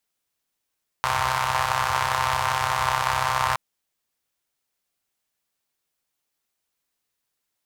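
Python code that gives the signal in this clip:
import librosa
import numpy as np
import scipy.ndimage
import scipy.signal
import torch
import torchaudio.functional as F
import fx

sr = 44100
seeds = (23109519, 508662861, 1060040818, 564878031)

y = fx.engine_four(sr, seeds[0], length_s=2.52, rpm=3900, resonances_hz=(88.0, 980.0))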